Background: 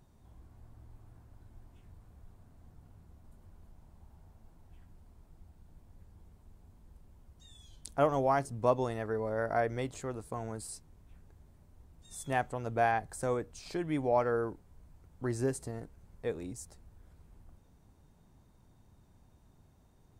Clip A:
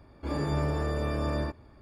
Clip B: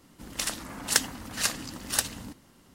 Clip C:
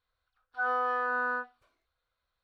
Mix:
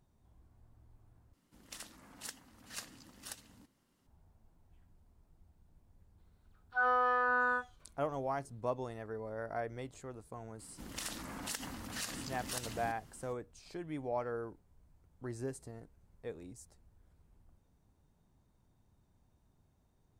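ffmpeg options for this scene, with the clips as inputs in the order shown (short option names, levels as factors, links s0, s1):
-filter_complex "[2:a]asplit=2[s0][s1];[0:a]volume=0.376[s2];[s0]alimiter=limit=0.376:level=0:latency=1:release=412[s3];[s1]acompressor=threshold=0.0282:ratio=12:attack=2.6:release=103:knee=6:detection=peak[s4];[s2]asplit=2[s5][s6];[s5]atrim=end=1.334[s7];[s3]atrim=end=2.74,asetpts=PTS-STARTPTS,volume=0.133[s8];[s6]atrim=start=4.066[s9];[3:a]atrim=end=2.43,asetpts=PTS-STARTPTS,volume=0.944,afade=t=in:d=0.004:c=hsin,afade=t=out:st=2.426:d=0.004:c=hsin,adelay=272538S[s10];[s4]atrim=end=2.74,asetpts=PTS-STARTPTS,volume=0.631,afade=t=in:d=0.004:c=hsin,afade=t=out:st=2.736:d=0.004:c=hsin,adelay=10590[s11];[s7][s8]acrossfade=d=0.004:c1=hsin:c2=hsin[s12];[s12][s9]acrossfade=d=0.004:c1=hsin:c2=hsin[s13];[s13][s10][s11]amix=inputs=3:normalize=0"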